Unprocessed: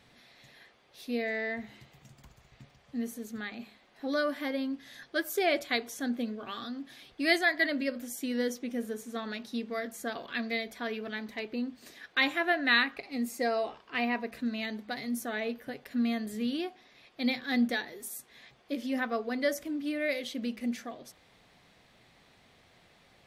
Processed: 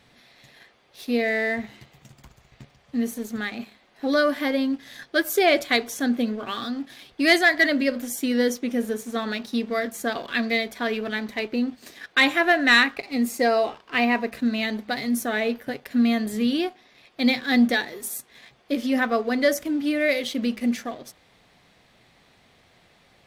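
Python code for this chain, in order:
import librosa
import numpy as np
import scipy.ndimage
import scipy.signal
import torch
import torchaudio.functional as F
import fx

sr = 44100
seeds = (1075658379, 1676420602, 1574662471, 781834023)

y = fx.leveller(x, sr, passes=1)
y = y * librosa.db_to_amplitude(5.5)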